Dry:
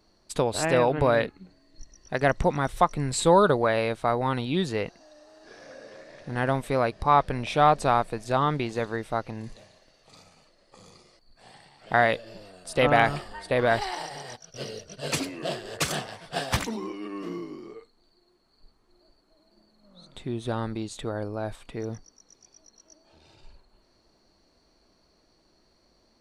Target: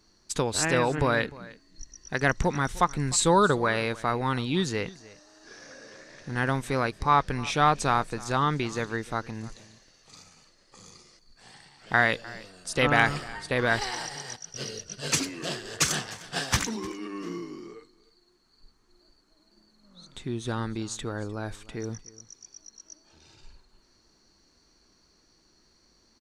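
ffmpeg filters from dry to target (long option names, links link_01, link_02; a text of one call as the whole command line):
ffmpeg -i in.wav -af "equalizer=frequency=630:width_type=o:width=0.67:gain=-8,equalizer=frequency=1600:width_type=o:width=0.67:gain=3,equalizer=frequency=6300:width_type=o:width=0.67:gain=9,aecho=1:1:303:0.0944" out.wav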